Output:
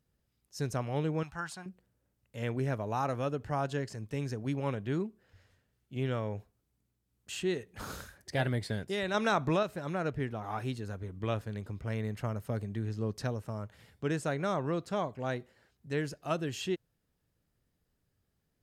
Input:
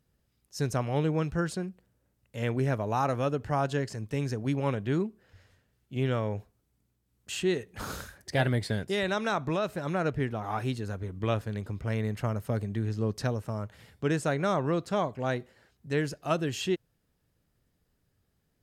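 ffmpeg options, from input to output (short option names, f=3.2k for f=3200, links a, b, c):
-filter_complex "[0:a]asettb=1/sr,asplit=3[a][b][c];[a]atrim=end=1.234[d];[b]atrim=start=1.23:end=1.66,asetpts=PTS-STARTPTS,afade=t=in:d=0.004:c=qsin,afade=t=out:st=0.426:d=0.004:c=qsin,lowshelf=f=620:t=q:w=3:g=-10[e];[c]atrim=start=1.656[f];[d][e]acrossfade=d=0.004:c1=hsin:c2=qsin[g];[g][f]acrossfade=d=0.004:c1=qsin:c2=hsin,asettb=1/sr,asplit=3[h][i][j];[h]atrim=end=9.144[k];[i]atrim=start=9.14:end=9.63,asetpts=PTS-STARTPTS,afade=t=in:d=0.004:c=qsin,afade=t=out:st=0.486:d=0.004:c=qsin,acontrast=35[l];[j]atrim=start=9.626[m];[k][l]acrossfade=d=0.004:c1=hsin:c2=qsin[n];[n][m]acrossfade=d=0.004:c1=qsin:c2=hsin,volume=-4.5dB"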